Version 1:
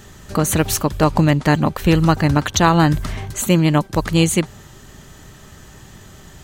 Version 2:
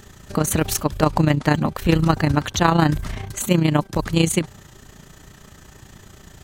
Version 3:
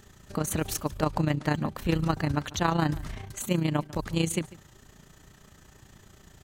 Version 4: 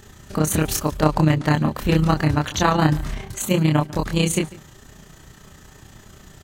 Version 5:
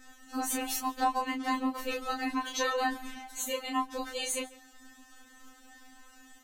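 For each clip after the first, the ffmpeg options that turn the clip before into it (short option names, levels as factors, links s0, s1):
-af "tremolo=f=29:d=0.667"
-filter_complex "[0:a]asplit=2[s0][s1];[s1]adelay=145.8,volume=0.1,highshelf=f=4000:g=-3.28[s2];[s0][s2]amix=inputs=2:normalize=0,volume=0.355"
-filter_complex "[0:a]asplit=2[s0][s1];[s1]adelay=26,volume=0.708[s2];[s0][s2]amix=inputs=2:normalize=0,volume=2.11"
-af "afftfilt=real='re*3.46*eq(mod(b,12),0)':imag='im*3.46*eq(mod(b,12),0)':win_size=2048:overlap=0.75,volume=0.531"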